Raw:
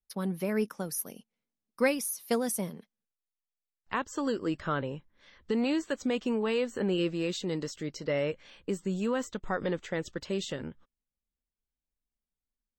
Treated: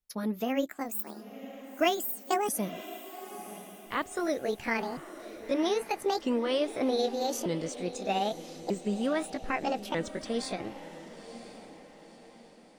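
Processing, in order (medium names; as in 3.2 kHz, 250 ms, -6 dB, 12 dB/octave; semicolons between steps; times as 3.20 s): sawtooth pitch modulation +9 st, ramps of 1243 ms; echo that smears into a reverb 977 ms, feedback 44%, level -13 dB; trim +1.5 dB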